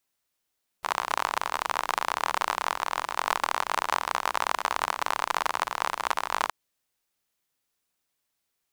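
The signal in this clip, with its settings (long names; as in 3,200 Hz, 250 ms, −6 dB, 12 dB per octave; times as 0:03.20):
rain-like ticks over hiss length 5.67 s, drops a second 46, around 1,000 Hz, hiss −25 dB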